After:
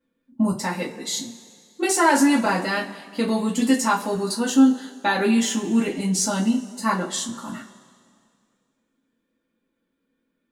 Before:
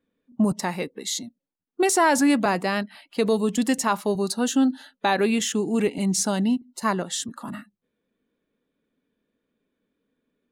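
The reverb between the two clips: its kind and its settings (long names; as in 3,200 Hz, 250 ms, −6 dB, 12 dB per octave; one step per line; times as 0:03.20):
coupled-rooms reverb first 0.24 s, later 2.2 s, from −22 dB, DRR −7 dB
level −6 dB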